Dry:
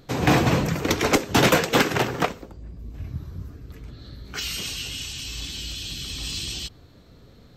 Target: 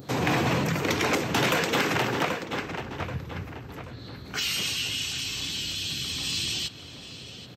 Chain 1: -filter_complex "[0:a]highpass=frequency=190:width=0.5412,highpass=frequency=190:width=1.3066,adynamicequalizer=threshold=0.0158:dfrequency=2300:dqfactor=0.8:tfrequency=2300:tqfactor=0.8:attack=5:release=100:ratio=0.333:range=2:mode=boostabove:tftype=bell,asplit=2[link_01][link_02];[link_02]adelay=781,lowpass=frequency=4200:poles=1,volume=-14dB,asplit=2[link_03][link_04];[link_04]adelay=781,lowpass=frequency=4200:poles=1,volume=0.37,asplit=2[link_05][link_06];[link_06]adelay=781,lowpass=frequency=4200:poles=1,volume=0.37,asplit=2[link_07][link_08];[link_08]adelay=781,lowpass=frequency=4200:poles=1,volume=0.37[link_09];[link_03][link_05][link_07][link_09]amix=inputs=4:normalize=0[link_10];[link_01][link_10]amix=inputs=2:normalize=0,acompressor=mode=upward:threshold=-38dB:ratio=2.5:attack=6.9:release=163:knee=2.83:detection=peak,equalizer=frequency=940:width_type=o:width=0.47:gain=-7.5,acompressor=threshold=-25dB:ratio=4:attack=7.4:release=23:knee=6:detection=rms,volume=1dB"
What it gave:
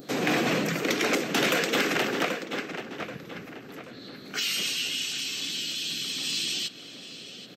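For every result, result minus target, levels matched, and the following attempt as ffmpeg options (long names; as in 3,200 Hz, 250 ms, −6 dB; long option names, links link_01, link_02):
125 Hz band −8.0 dB; 1,000 Hz band −3.0 dB
-filter_complex "[0:a]highpass=frequency=88:width=0.5412,highpass=frequency=88:width=1.3066,adynamicequalizer=threshold=0.0158:dfrequency=2300:dqfactor=0.8:tfrequency=2300:tqfactor=0.8:attack=5:release=100:ratio=0.333:range=2:mode=boostabove:tftype=bell,asplit=2[link_01][link_02];[link_02]adelay=781,lowpass=frequency=4200:poles=1,volume=-14dB,asplit=2[link_03][link_04];[link_04]adelay=781,lowpass=frequency=4200:poles=1,volume=0.37,asplit=2[link_05][link_06];[link_06]adelay=781,lowpass=frequency=4200:poles=1,volume=0.37,asplit=2[link_07][link_08];[link_08]adelay=781,lowpass=frequency=4200:poles=1,volume=0.37[link_09];[link_03][link_05][link_07][link_09]amix=inputs=4:normalize=0[link_10];[link_01][link_10]amix=inputs=2:normalize=0,acompressor=mode=upward:threshold=-38dB:ratio=2.5:attack=6.9:release=163:knee=2.83:detection=peak,equalizer=frequency=940:width_type=o:width=0.47:gain=-7.5,acompressor=threshold=-25dB:ratio=4:attack=7.4:release=23:knee=6:detection=rms,volume=1dB"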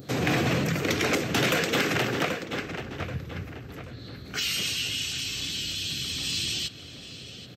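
1,000 Hz band −3.5 dB
-filter_complex "[0:a]highpass=frequency=88:width=0.5412,highpass=frequency=88:width=1.3066,adynamicequalizer=threshold=0.0158:dfrequency=2300:dqfactor=0.8:tfrequency=2300:tqfactor=0.8:attack=5:release=100:ratio=0.333:range=2:mode=boostabove:tftype=bell,asplit=2[link_01][link_02];[link_02]adelay=781,lowpass=frequency=4200:poles=1,volume=-14dB,asplit=2[link_03][link_04];[link_04]adelay=781,lowpass=frequency=4200:poles=1,volume=0.37,asplit=2[link_05][link_06];[link_06]adelay=781,lowpass=frequency=4200:poles=1,volume=0.37,asplit=2[link_07][link_08];[link_08]adelay=781,lowpass=frequency=4200:poles=1,volume=0.37[link_09];[link_03][link_05][link_07][link_09]amix=inputs=4:normalize=0[link_10];[link_01][link_10]amix=inputs=2:normalize=0,acompressor=mode=upward:threshold=-38dB:ratio=2.5:attack=6.9:release=163:knee=2.83:detection=peak,equalizer=frequency=940:width_type=o:width=0.47:gain=2,acompressor=threshold=-25dB:ratio=4:attack=7.4:release=23:knee=6:detection=rms,volume=1dB"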